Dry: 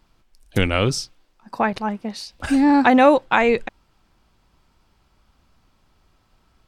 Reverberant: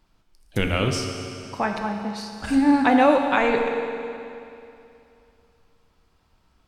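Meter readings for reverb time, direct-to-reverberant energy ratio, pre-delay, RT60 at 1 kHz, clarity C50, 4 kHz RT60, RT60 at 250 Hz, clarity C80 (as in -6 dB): 2.7 s, 3.0 dB, 11 ms, 2.7 s, 4.0 dB, 2.6 s, 2.7 s, 5.0 dB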